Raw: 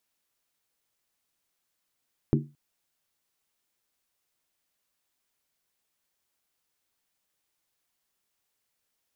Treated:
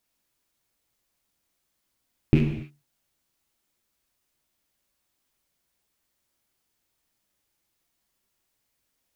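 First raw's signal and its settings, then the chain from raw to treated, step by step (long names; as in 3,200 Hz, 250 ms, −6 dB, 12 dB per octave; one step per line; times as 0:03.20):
struck skin length 0.22 s, lowest mode 145 Hz, decay 0.30 s, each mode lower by 2 dB, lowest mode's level −18.5 dB
loose part that buzzes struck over −33 dBFS, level −24 dBFS
low-shelf EQ 270 Hz +8 dB
reverb whose tail is shaped and stops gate 310 ms falling, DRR 1.5 dB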